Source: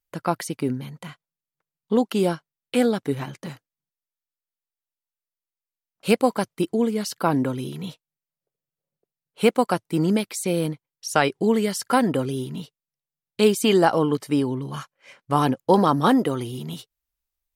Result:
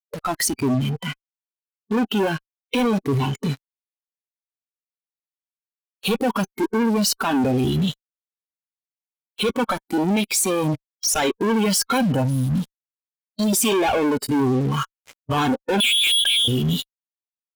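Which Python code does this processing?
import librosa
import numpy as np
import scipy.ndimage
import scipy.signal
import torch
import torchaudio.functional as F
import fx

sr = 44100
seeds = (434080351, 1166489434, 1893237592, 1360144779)

y = fx.fixed_phaser(x, sr, hz=950.0, stages=4, at=(12.02, 13.53))
y = fx.freq_invert(y, sr, carrier_hz=3600, at=(15.8, 16.48))
y = fx.fuzz(y, sr, gain_db=44.0, gate_db=-42.0)
y = fx.noise_reduce_blind(y, sr, reduce_db=13)
y = F.gain(torch.from_numpy(y), -4.0).numpy()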